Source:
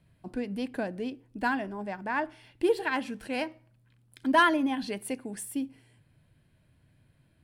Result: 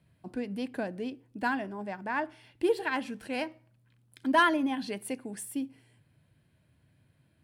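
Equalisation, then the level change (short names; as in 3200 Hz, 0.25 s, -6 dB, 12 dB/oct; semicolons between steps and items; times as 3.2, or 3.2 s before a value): HPF 64 Hz; -1.5 dB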